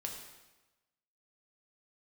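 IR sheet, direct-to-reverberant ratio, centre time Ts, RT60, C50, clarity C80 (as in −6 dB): 0.0 dB, 40 ms, 1.1 s, 4.5 dB, 6.5 dB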